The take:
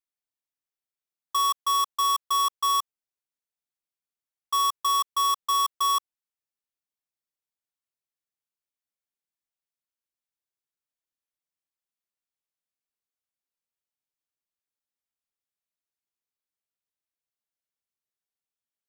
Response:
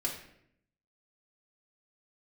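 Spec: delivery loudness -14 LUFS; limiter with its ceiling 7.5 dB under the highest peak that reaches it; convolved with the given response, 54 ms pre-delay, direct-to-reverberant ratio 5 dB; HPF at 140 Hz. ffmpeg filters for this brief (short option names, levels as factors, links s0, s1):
-filter_complex "[0:a]highpass=140,alimiter=level_in=1.5:limit=0.0631:level=0:latency=1,volume=0.668,asplit=2[s0][s1];[1:a]atrim=start_sample=2205,adelay=54[s2];[s1][s2]afir=irnorm=-1:irlink=0,volume=0.355[s3];[s0][s3]amix=inputs=2:normalize=0,volume=8.41"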